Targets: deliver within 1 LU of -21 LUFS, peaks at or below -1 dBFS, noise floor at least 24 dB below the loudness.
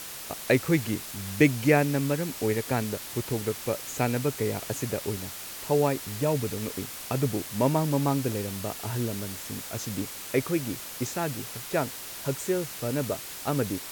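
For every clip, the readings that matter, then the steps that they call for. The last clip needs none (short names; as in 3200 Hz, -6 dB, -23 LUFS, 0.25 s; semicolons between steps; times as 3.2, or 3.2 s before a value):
noise floor -40 dBFS; noise floor target -53 dBFS; loudness -28.5 LUFS; peak -7.5 dBFS; loudness target -21.0 LUFS
-> denoiser 13 dB, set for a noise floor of -40 dBFS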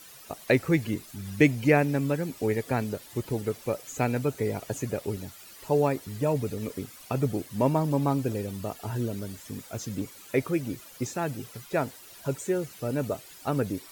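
noise floor -49 dBFS; noise floor target -53 dBFS
-> denoiser 6 dB, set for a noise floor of -49 dBFS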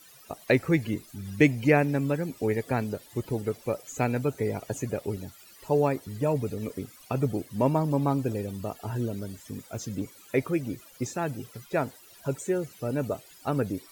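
noise floor -53 dBFS; loudness -29.0 LUFS; peak -7.5 dBFS; loudness target -21.0 LUFS
-> gain +8 dB; limiter -1 dBFS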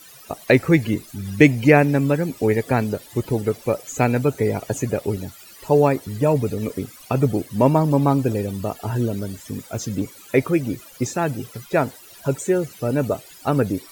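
loudness -21.0 LUFS; peak -1.0 dBFS; noise floor -45 dBFS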